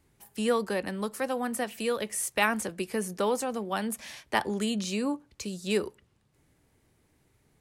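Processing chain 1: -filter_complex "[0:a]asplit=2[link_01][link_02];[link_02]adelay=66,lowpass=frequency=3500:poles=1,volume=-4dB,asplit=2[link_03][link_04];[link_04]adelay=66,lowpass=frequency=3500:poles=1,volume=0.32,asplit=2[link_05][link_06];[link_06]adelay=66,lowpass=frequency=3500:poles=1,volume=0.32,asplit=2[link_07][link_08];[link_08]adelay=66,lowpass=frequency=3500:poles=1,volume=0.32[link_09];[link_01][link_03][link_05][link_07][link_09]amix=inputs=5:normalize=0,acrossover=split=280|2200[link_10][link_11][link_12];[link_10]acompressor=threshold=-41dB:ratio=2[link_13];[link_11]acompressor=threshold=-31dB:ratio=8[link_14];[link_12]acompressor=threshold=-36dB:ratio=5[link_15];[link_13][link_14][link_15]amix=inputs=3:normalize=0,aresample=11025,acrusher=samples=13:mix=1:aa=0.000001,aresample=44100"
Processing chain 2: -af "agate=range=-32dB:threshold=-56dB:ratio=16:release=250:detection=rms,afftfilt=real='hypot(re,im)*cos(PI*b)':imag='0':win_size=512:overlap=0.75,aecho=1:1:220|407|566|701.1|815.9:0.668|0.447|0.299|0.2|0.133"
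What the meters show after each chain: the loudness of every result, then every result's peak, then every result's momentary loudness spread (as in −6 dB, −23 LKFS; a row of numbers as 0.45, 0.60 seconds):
−34.5, −33.5 LKFS; −18.0, −11.5 dBFS; 6, 8 LU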